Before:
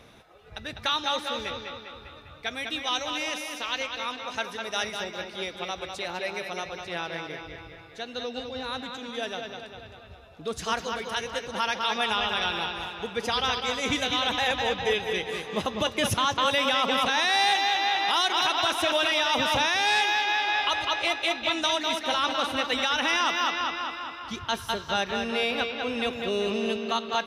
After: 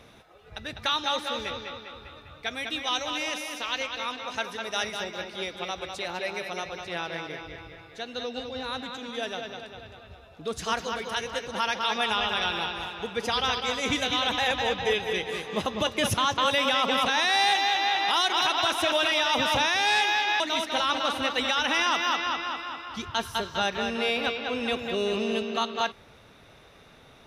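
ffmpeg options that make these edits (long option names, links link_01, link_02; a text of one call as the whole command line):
ffmpeg -i in.wav -filter_complex "[0:a]asplit=2[link_01][link_02];[link_01]atrim=end=20.402[link_03];[link_02]atrim=start=21.738[link_04];[link_03][link_04]acrossfade=duration=0.004:curve1=hsin:curve2=hsin" out.wav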